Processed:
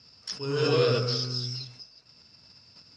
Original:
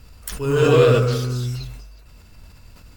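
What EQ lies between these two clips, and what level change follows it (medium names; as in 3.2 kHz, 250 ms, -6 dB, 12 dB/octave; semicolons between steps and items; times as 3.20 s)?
high-pass 110 Hz 24 dB/octave; four-pole ladder low-pass 5.3 kHz, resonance 90%; +3.5 dB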